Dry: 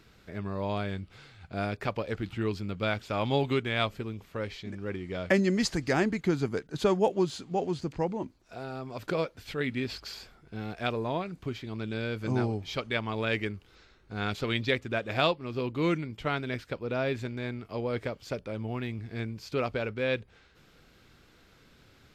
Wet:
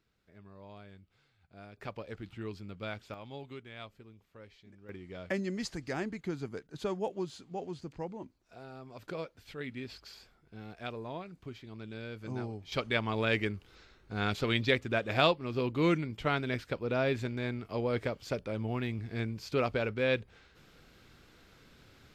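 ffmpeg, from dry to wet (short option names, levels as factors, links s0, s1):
-af "asetnsamples=n=441:p=0,asendcmd='1.77 volume volume -10dB;3.14 volume volume -18dB;4.89 volume volume -9.5dB;12.72 volume volume 0dB',volume=0.112"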